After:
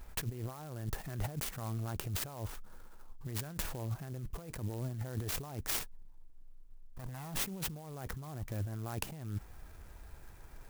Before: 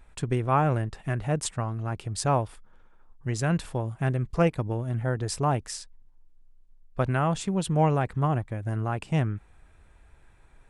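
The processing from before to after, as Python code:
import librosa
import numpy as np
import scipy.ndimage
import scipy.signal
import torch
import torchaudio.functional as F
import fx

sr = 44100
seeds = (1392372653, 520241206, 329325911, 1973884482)

y = fx.lower_of_two(x, sr, delay_ms=1.1, at=(5.79, 7.4))
y = fx.over_compress(y, sr, threshold_db=-36.0, ratio=-1.0)
y = fx.clock_jitter(y, sr, seeds[0], jitter_ms=0.073)
y = F.gain(torch.from_numpy(y), -4.0).numpy()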